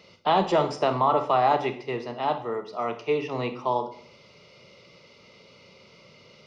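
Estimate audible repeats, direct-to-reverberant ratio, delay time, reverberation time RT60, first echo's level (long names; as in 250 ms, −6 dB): no echo audible, 8.5 dB, no echo audible, 0.60 s, no echo audible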